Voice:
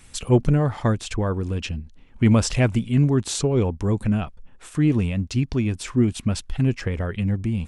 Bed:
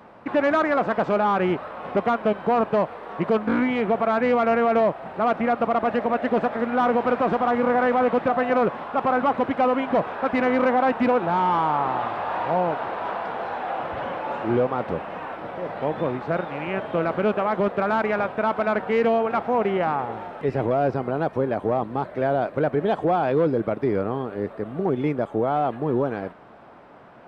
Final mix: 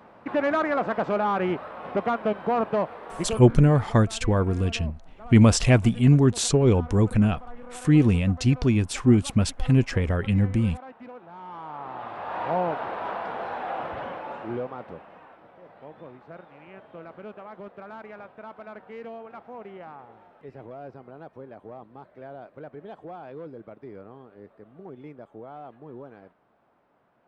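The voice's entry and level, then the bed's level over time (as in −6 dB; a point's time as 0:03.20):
3.10 s, +1.5 dB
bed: 0:03.19 −3.5 dB
0:03.69 −23 dB
0:11.28 −23 dB
0:12.47 −3 dB
0:13.85 −3 dB
0:15.50 −19 dB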